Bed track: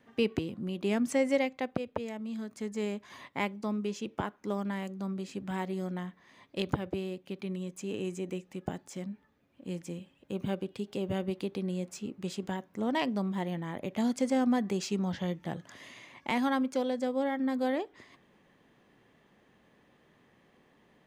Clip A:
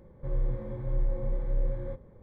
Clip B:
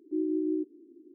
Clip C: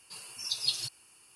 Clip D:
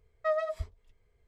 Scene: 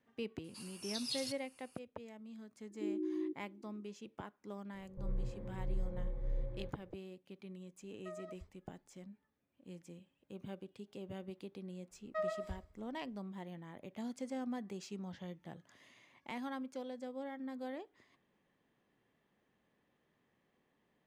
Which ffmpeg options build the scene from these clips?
-filter_complex "[4:a]asplit=2[s0][s1];[0:a]volume=0.211[s2];[3:a]alimiter=limit=0.1:level=0:latency=1:release=33[s3];[1:a]acrossover=split=1200[s4][s5];[s5]adelay=100[s6];[s4][s6]amix=inputs=2:normalize=0[s7];[s0]alimiter=level_in=1.19:limit=0.0631:level=0:latency=1:release=71,volume=0.841[s8];[s1]aecho=1:1:66|132|198|264|330:0.266|0.125|0.0588|0.0276|0.013[s9];[s3]atrim=end=1.35,asetpts=PTS-STARTPTS,volume=0.422,afade=t=in:d=0.004:c=hsin,afade=t=out:st=1.346:d=0.004:c=hsin,adelay=440[s10];[2:a]atrim=end=1.14,asetpts=PTS-STARTPTS,volume=0.355,afade=t=in:d=0.004:c=hsin,afade=t=out:st=1.136:d=0.004:c=hsin,adelay=2690[s11];[s7]atrim=end=2.22,asetpts=PTS-STARTPTS,volume=0.335,afade=t=in:d=0.004:c=hsin,afade=t=out:st=2.216:d=0.004:c=hsin,adelay=4740[s12];[s8]atrim=end=1.27,asetpts=PTS-STARTPTS,volume=0.15,afade=t=in:d=0.004:c=hsin,afade=t=out:st=1.266:d=0.004:c=hsin,adelay=7810[s13];[s9]atrim=end=1.27,asetpts=PTS-STARTPTS,volume=0.355,afade=t=in:d=0.004:c=hsin,afade=t=out:st=1.266:d=0.004:c=hsin,adelay=11900[s14];[s2][s10][s11][s12][s13][s14]amix=inputs=6:normalize=0"

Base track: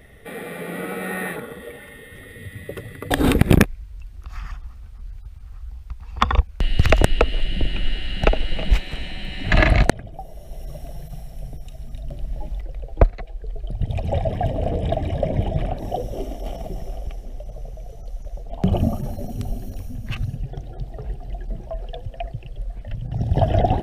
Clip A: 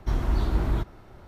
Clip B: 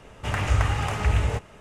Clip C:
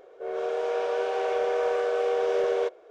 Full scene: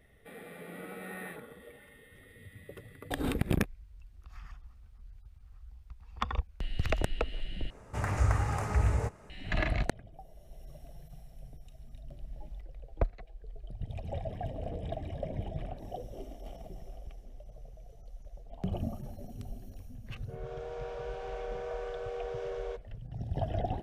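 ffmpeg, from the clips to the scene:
-filter_complex "[0:a]volume=0.178[s0];[2:a]equalizer=f=3100:t=o:w=0.81:g=-14[s1];[s0]asplit=2[s2][s3];[s2]atrim=end=7.704[s4];[s1]atrim=end=1.6,asetpts=PTS-STARTPTS,volume=0.562[s5];[s3]atrim=start=9.296[s6];[3:a]atrim=end=2.9,asetpts=PTS-STARTPTS,volume=0.224,afade=t=in:d=0.004:c=hsin,afade=t=out:st=2.896:d=0.004:c=hsin,adelay=20080[s7];[s4][s5]acrossfade=d=0.004:c1=hsin:c2=hsin[s8];[s8][s6]acrossfade=d=0.004:c1=hsin:c2=hsin[s9];[s9][s7]amix=inputs=2:normalize=0"

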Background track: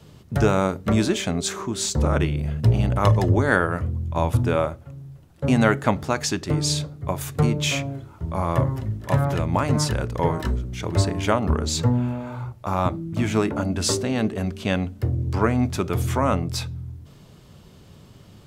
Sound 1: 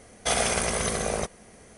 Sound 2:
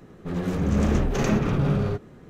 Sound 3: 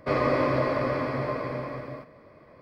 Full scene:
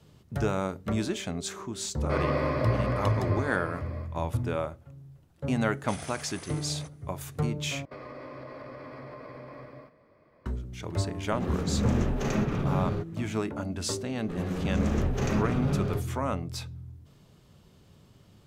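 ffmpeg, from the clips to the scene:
-filter_complex "[3:a]asplit=2[s0][s1];[2:a]asplit=2[s2][s3];[0:a]volume=0.355[s4];[1:a]highpass=640[s5];[s1]acompressor=threshold=0.0316:ratio=6:attack=3.2:release=140:knee=1:detection=peak[s6];[s4]asplit=2[s7][s8];[s7]atrim=end=7.854[s9];[s6]atrim=end=2.61,asetpts=PTS-STARTPTS,volume=0.355[s10];[s8]atrim=start=10.456[s11];[s0]atrim=end=2.61,asetpts=PTS-STARTPTS,volume=0.596,afade=t=in:d=0.004:c=hsin,afade=t=out:st=2.606:d=0.004:c=hsin,adelay=2030[s12];[s5]atrim=end=1.77,asetpts=PTS-STARTPTS,volume=0.141,afade=t=in:d=0.004:c=hsin,afade=t=out:st=1.766:d=0.004:c=hsin,adelay=5620[s13];[s2]atrim=end=2.29,asetpts=PTS-STARTPTS,volume=0.531,afade=t=in:d=0.004:c=hsin,afade=t=out:st=2.286:d=0.004:c=hsin,adelay=487746S[s14];[s3]atrim=end=2.29,asetpts=PTS-STARTPTS,volume=0.531,afade=t=in:d=0.004:c=hsin,afade=t=out:st=2.286:d=0.004:c=hsin,adelay=14030[s15];[s9][s10]acrossfade=d=0.004:c1=hsin:c2=hsin[s16];[s16][s11]acrossfade=d=0.004:c1=hsin:c2=hsin[s17];[s17][s12][s13][s14][s15]amix=inputs=5:normalize=0"

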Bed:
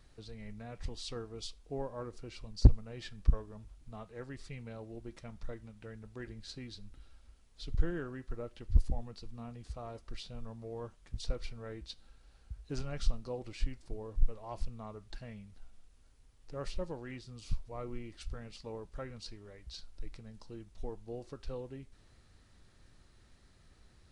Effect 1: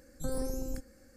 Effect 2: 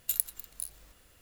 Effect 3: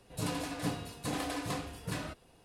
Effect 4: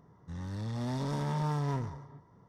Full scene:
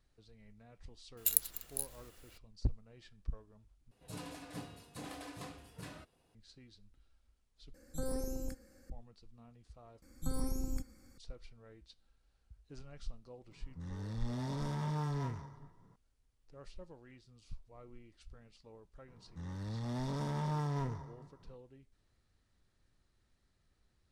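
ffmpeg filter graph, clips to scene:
-filter_complex "[1:a]asplit=2[s0][s1];[4:a]asplit=2[s2][s3];[0:a]volume=0.224[s4];[s1]aecho=1:1:0.9:0.6[s5];[s2]acrossover=split=650[s6][s7];[s7]adelay=40[s8];[s6][s8]amix=inputs=2:normalize=0[s9];[s4]asplit=4[s10][s11][s12][s13];[s10]atrim=end=3.914[s14];[3:a]atrim=end=2.44,asetpts=PTS-STARTPTS,volume=0.282[s15];[s11]atrim=start=6.346:end=7.744[s16];[s0]atrim=end=1.16,asetpts=PTS-STARTPTS,volume=0.668[s17];[s12]atrim=start=8.896:end=10.024[s18];[s5]atrim=end=1.16,asetpts=PTS-STARTPTS,volume=0.668[s19];[s13]atrim=start=11.176[s20];[2:a]atrim=end=1.21,asetpts=PTS-STARTPTS,volume=0.944,afade=t=in:d=0.004:c=hsin,afade=t=out:st=1.206:d=0.004:c=hsin,adelay=1170[s21];[s9]atrim=end=2.48,asetpts=PTS-STARTPTS,volume=0.596,afade=t=in:d=0.004:c=hsin,afade=t=out:st=2.476:d=0.004:c=hsin,adelay=594468S[s22];[s3]atrim=end=2.48,asetpts=PTS-STARTPTS,volume=0.631,afade=t=in:d=0.004:c=hsin,afade=t=out:st=2.476:d=0.004:c=hsin,adelay=841428S[s23];[s14][s15]acrossfade=d=0.004:c1=hsin:c2=hsin[s24];[s24][s16]acrossfade=d=0.004:c1=hsin:c2=hsin[s25];[s25][s17]acrossfade=d=0.004:c1=hsin:c2=hsin[s26];[s26][s18]acrossfade=d=0.004:c1=hsin:c2=hsin[s27];[s27][s19]acrossfade=d=0.004:c1=hsin:c2=hsin[s28];[s28][s20]acrossfade=d=0.004:c1=hsin:c2=hsin[s29];[s29][s21][s22][s23]amix=inputs=4:normalize=0"

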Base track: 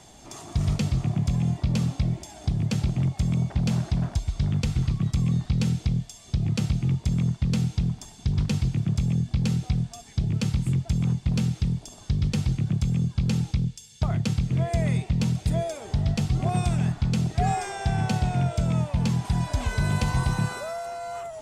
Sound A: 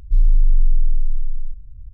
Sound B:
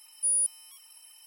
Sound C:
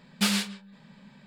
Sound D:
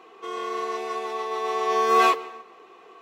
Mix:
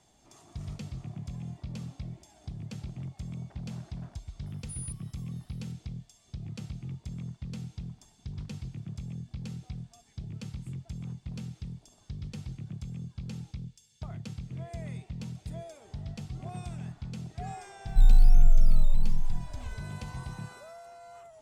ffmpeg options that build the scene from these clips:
-filter_complex "[0:a]volume=0.178[s0];[1:a]acrusher=samples=9:mix=1:aa=0.000001:lfo=1:lforange=5.4:lforate=1.2[s1];[2:a]atrim=end=1.26,asetpts=PTS-STARTPTS,volume=0.141,afade=t=in:d=0.004:c=hsin,afade=t=out:st=1.256:d=0.004:c=hsin,adelay=4460[s2];[s1]atrim=end=1.93,asetpts=PTS-STARTPTS,volume=0.668,afade=t=in:d=0.004:c=hsin,afade=t=out:st=1.926:d=0.004:c=hsin,adelay=17850[s3];[s0][s2][s3]amix=inputs=3:normalize=0"

